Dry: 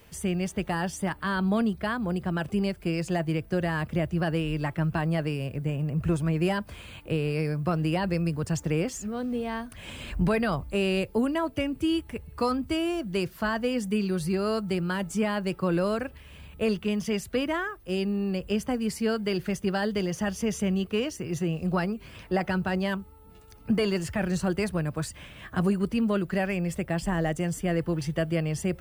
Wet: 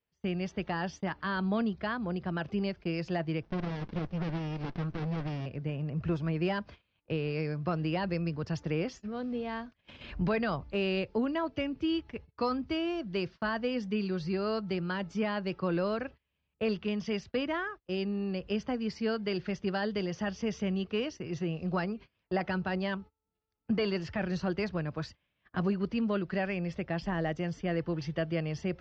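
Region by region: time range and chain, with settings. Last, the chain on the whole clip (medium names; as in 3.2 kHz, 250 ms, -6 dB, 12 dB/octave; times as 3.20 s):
3.43–5.46 s: overdrive pedal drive 14 dB, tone 2.7 kHz, clips at -15.5 dBFS + sliding maximum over 65 samples
whole clip: steep low-pass 5.6 kHz 48 dB/octave; gate -39 dBFS, range -29 dB; bass shelf 100 Hz -6.5 dB; trim -4 dB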